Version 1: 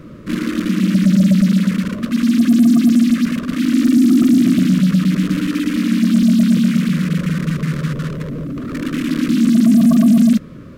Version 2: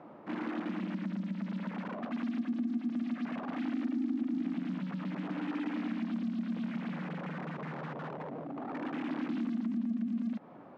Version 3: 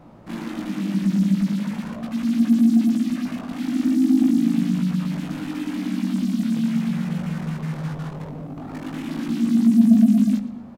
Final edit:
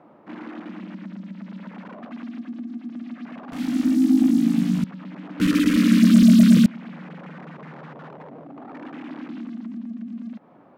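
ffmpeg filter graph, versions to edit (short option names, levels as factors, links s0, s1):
-filter_complex "[1:a]asplit=3[s0][s1][s2];[s0]atrim=end=3.522[s3];[2:a]atrim=start=3.518:end=4.842[s4];[s1]atrim=start=4.838:end=5.402[s5];[0:a]atrim=start=5.398:end=6.662[s6];[s2]atrim=start=6.658[s7];[s3][s4]acrossfade=d=0.004:c1=hsin:c2=hsin[s8];[s8][s5]acrossfade=d=0.004:c1=hsin:c2=hsin[s9];[s9][s6]acrossfade=d=0.004:c1=hsin:c2=hsin[s10];[s10][s7]acrossfade=d=0.004:c1=hsin:c2=hsin"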